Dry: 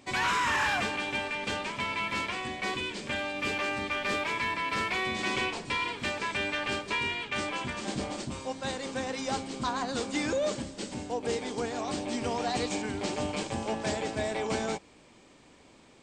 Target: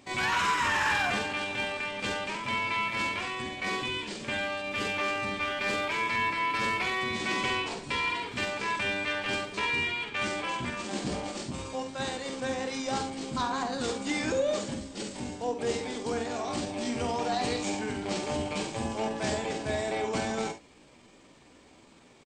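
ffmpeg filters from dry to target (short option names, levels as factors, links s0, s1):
-af "atempo=0.72,aecho=1:1:49|70:0.398|0.237"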